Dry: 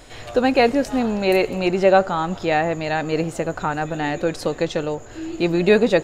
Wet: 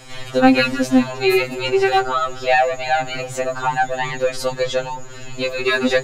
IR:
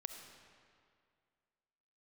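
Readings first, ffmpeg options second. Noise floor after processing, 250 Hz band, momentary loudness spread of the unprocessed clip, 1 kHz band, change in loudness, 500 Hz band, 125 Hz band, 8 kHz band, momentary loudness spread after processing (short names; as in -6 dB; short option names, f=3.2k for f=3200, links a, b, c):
-33 dBFS, +1.0 dB, 9 LU, +3.5 dB, +1.5 dB, -1.0 dB, -4.0 dB, +5.5 dB, 9 LU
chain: -filter_complex "[0:a]equalizer=f=400:t=o:w=2.5:g=-4,acrossover=split=220|1100[a][b][c];[b]asoftclip=type=hard:threshold=-21dB[d];[a][d][c]amix=inputs=3:normalize=0,afftfilt=real='re*2.45*eq(mod(b,6),0)':imag='im*2.45*eq(mod(b,6),0)':win_size=2048:overlap=0.75,volume=8dB"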